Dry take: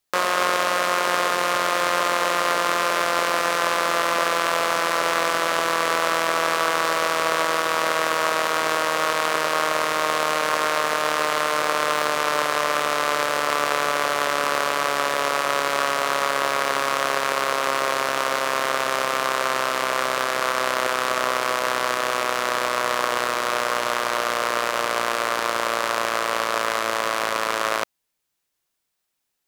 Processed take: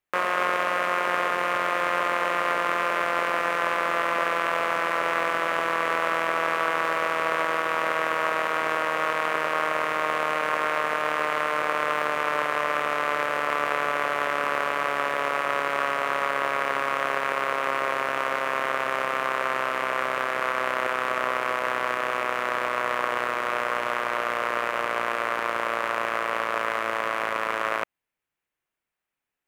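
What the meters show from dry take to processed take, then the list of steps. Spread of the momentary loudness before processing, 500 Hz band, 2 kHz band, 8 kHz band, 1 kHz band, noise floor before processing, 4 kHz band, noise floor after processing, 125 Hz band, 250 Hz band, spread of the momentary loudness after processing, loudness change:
2 LU, −4.0 dB, −2.0 dB, −15.0 dB, −3.0 dB, −78 dBFS, −9.5 dB, below −85 dBFS, −4.0 dB, −4.0 dB, 2 LU, −3.5 dB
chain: high shelf with overshoot 3,200 Hz −9.5 dB, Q 1.5
level −4 dB

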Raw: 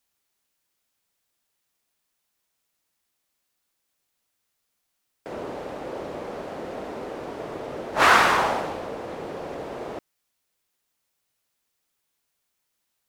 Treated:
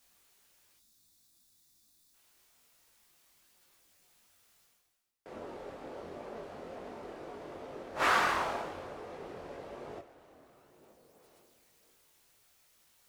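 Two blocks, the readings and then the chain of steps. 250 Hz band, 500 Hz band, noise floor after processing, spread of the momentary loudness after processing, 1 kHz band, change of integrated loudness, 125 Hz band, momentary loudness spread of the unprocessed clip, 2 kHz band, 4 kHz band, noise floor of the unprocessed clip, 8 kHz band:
−11.5 dB, −11.0 dB, −68 dBFS, 18 LU, −10.5 dB, −11.0 dB, −11.5 dB, 18 LU, −11.0 dB, −11.0 dB, −78 dBFS, −11.0 dB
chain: coupled-rooms reverb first 0.26 s, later 3.2 s, from −19 dB, DRR 9 dB
reversed playback
upward compression, threshold −37 dBFS
reversed playback
gain on a spectral selection 0:00.77–0:02.14, 350–3,400 Hz −12 dB
multi-voice chorus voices 4, 1 Hz, delay 22 ms, depth 3 ms
level −8.5 dB

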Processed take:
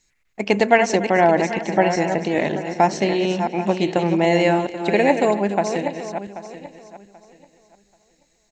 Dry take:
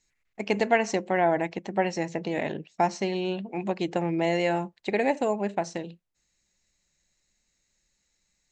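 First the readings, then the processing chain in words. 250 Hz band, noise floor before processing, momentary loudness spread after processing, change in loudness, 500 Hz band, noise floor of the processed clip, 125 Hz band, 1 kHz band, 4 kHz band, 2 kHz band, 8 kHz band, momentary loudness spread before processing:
+8.5 dB, −75 dBFS, 14 LU, +8.0 dB, +8.5 dB, −65 dBFS, +8.5 dB, +8.5 dB, +8.5 dB, +8.5 dB, +8.5 dB, 8 LU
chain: feedback delay that plays each chunk backwards 392 ms, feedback 47%, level −8 dB
single-tap delay 287 ms −17.5 dB
level +7.5 dB

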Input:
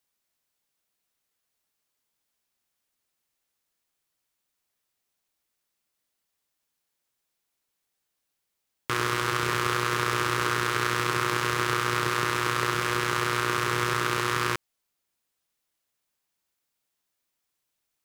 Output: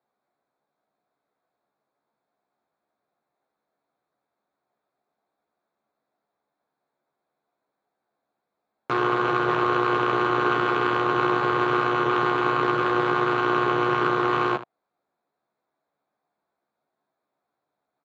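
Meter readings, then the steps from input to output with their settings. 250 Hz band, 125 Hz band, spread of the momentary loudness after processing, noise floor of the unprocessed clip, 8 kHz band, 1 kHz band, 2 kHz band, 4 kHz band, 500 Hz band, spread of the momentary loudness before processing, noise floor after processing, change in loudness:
+8.0 dB, −1.5 dB, 1 LU, −81 dBFS, below −20 dB, +5.5 dB, +0.5 dB, −4.5 dB, +7.5 dB, 1 LU, −83 dBFS, +3.5 dB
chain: adaptive Wiener filter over 15 samples
treble cut that deepens with the level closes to 2,000 Hz
in parallel at +2.5 dB: brickwall limiter −16 dBFS, peak gain reduction 8 dB
on the sum: asymmetric clip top −21.5 dBFS
loudspeaker in its box 180–5,200 Hz, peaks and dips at 700 Hz +7 dB, 1,900 Hz −6 dB, 4,900 Hz −9 dB
on a send: ambience of single reflections 14 ms −5 dB, 77 ms −13.5 dB
on the sum: level +1.5 dB

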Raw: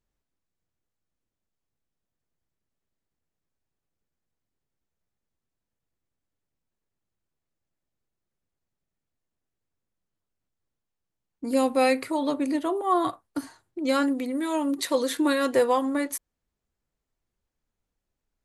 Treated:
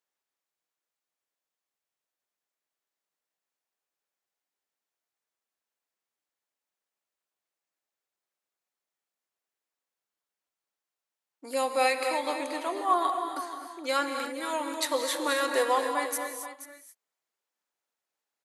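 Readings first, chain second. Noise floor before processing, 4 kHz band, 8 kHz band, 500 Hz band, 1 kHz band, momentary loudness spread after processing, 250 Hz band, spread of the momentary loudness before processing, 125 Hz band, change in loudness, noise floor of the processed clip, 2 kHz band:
−85 dBFS, +1.5 dB, +1.5 dB, −4.0 dB, +0.5 dB, 11 LU, −12.5 dB, 14 LU, can't be measured, −3.5 dB, below −85 dBFS, +1.5 dB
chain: high-pass filter 640 Hz 12 dB per octave
on a send: single-tap delay 479 ms −12.5 dB
on the sum: reverb whose tail is shaped and stops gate 300 ms rising, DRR 5 dB

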